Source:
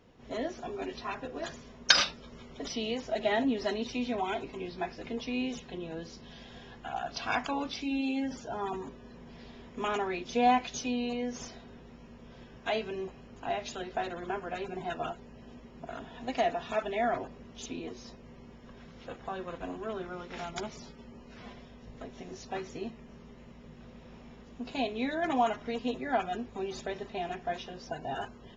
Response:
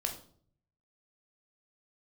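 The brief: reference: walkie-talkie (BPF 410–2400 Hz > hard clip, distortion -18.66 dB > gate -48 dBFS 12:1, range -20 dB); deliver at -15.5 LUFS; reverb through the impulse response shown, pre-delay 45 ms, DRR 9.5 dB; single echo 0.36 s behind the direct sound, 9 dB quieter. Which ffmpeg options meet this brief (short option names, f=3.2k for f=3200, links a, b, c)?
-filter_complex "[0:a]aecho=1:1:360:0.355,asplit=2[a][b];[1:a]atrim=start_sample=2205,adelay=45[c];[b][c]afir=irnorm=-1:irlink=0,volume=-12dB[d];[a][d]amix=inputs=2:normalize=0,highpass=410,lowpass=2.4k,asoftclip=type=hard:threshold=-20.5dB,agate=range=-20dB:threshold=-48dB:ratio=12,volume=20.5dB"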